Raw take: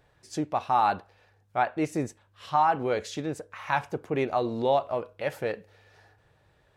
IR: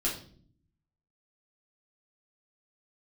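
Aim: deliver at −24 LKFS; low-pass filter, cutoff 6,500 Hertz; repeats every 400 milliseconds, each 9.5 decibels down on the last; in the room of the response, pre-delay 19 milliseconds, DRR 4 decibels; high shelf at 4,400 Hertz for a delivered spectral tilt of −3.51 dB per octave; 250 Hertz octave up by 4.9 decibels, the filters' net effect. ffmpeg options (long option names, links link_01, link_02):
-filter_complex "[0:a]lowpass=6500,equalizer=frequency=250:width_type=o:gain=6.5,highshelf=frequency=4400:gain=-3.5,aecho=1:1:400|800|1200|1600:0.335|0.111|0.0365|0.012,asplit=2[link_01][link_02];[1:a]atrim=start_sample=2205,adelay=19[link_03];[link_02][link_03]afir=irnorm=-1:irlink=0,volume=-10dB[link_04];[link_01][link_04]amix=inputs=2:normalize=0,volume=1dB"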